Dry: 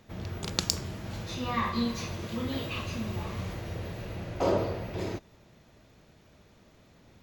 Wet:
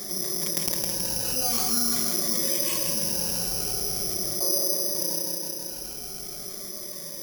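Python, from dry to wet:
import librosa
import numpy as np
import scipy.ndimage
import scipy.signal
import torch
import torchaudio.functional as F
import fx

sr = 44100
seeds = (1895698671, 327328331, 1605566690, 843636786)

y = fx.spec_ripple(x, sr, per_octave=1.2, drift_hz=-0.45, depth_db=16)
y = fx.doppler_pass(y, sr, speed_mps=12, closest_m=11.0, pass_at_s=2.13)
y = fx.peak_eq(y, sr, hz=470.0, db=9.0, octaves=1.5)
y = y + 0.89 * np.pad(y, (int(5.4 * sr / 1000.0), 0))[:len(y)]
y = fx.echo_feedback(y, sr, ms=161, feedback_pct=43, wet_db=-6.0)
y = (np.kron(y[::8], np.eye(8)[0]) * 8)[:len(y)]
y = fx.env_flatten(y, sr, amount_pct=70)
y = y * librosa.db_to_amplitude(-15.0)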